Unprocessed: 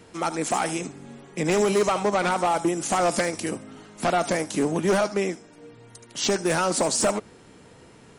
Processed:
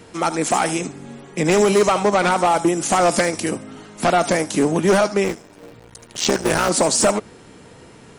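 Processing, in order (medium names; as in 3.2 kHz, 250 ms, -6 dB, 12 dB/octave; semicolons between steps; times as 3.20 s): 5.24–6.69 s: cycle switcher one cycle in 3, muted; trim +6 dB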